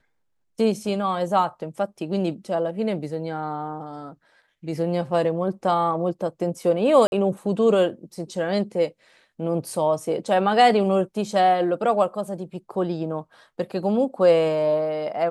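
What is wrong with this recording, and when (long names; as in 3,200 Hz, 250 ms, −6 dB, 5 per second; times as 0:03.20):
0:07.07–0:07.12: drop-out 51 ms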